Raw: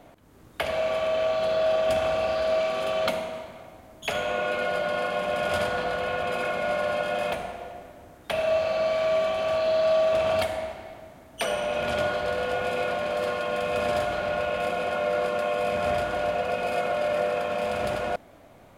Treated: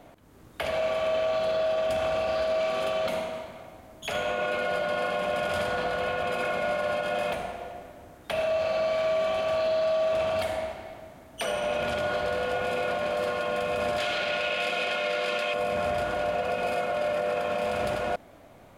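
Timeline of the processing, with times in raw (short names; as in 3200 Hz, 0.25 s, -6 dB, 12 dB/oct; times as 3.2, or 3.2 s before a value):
13.98–15.54 weighting filter D
whole clip: limiter -19.5 dBFS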